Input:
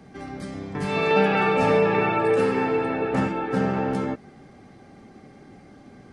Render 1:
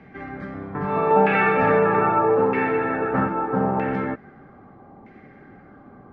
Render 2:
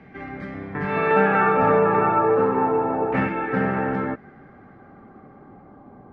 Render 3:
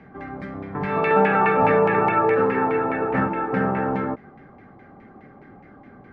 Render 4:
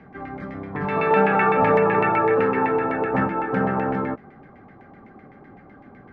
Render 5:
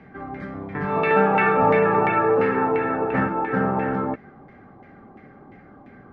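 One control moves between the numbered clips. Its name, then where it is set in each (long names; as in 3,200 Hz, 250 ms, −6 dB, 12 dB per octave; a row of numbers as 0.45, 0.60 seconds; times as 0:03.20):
auto-filter low-pass, speed: 0.79, 0.32, 4.8, 7.9, 2.9 Hertz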